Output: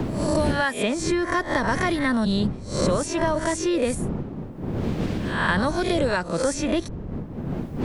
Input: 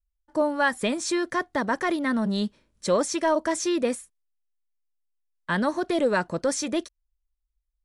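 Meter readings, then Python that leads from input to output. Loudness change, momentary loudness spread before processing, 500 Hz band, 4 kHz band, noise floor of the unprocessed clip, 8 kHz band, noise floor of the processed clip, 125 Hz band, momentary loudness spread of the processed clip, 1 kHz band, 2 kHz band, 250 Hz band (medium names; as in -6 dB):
+1.5 dB, 7 LU, +1.5 dB, +3.0 dB, -79 dBFS, +0.5 dB, -35 dBFS, +12.0 dB, 9 LU, +2.0 dB, +3.0 dB, +3.5 dB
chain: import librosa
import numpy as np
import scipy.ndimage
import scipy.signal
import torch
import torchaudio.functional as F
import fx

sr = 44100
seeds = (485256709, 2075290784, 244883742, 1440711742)

y = fx.spec_swells(x, sr, rise_s=0.41)
y = fx.dmg_wind(y, sr, seeds[0], corner_hz=200.0, level_db=-31.0)
y = fx.band_squash(y, sr, depth_pct=100)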